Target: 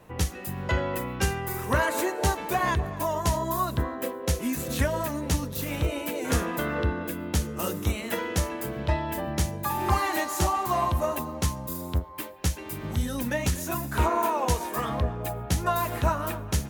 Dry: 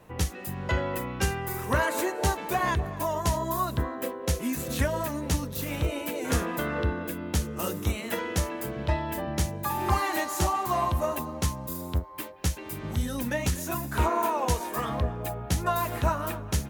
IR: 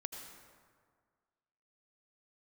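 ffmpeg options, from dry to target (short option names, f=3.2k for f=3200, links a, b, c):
-filter_complex "[0:a]asplit=2[a][b];[1:a]atrim=start_sample=2205,atrim=end_sample=6615[c];[b][c]afir=irnorm=-1:irlink=0,volume=-14.5dB[d];[a][d]amix=inputs=2:normalize=0"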